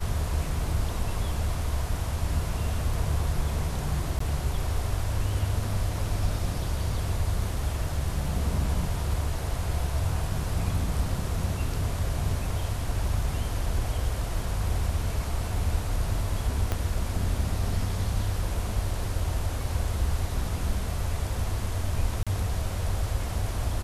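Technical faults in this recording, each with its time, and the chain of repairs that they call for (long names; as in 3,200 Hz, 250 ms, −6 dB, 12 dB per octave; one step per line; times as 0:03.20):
0:04.19–0:04.20: drop-out 14 ms
0:16.72: click −13 dBFS
0:22.23–0:22.27: drop-out 36 ms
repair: click removal
repair the gap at 0:04.19, 14 ms
repair the gap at 0:22.23, 36 ms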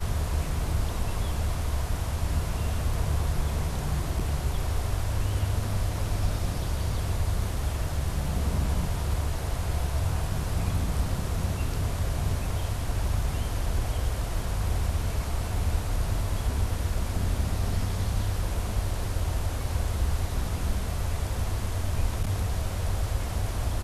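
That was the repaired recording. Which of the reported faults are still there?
0:16.72: click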